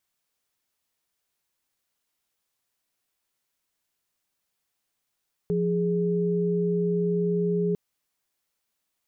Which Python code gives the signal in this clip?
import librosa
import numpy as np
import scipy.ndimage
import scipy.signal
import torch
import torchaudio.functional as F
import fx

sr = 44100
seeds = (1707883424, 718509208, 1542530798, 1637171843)

y = fx.chord(sr, length_s=2.25, notes=(53, 68), wave='sine', level_db=-24.5)